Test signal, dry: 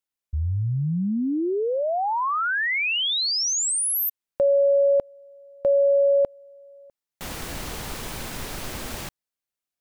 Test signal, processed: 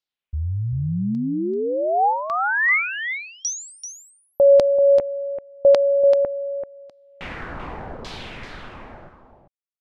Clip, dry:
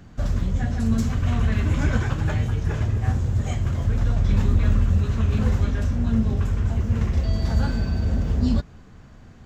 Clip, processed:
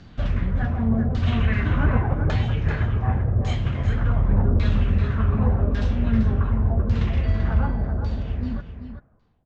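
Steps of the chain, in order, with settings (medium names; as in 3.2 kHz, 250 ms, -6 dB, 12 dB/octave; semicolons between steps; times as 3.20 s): fade out at the end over 2.28 s; LFO low-pass saw down 0.87 Hz 520–4700 Hz; on a send: delay 387 ms -9 dB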